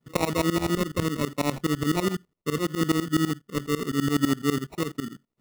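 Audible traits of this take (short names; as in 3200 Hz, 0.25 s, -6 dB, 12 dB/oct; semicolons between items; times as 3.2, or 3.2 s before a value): phasing stages 12, 0.74 Hz, lowest notch 740–1600 Hz; aliases and images of a low sample rate 1600 Hz, jitter 0%; tremolo saw up 12 Hz, depth 95%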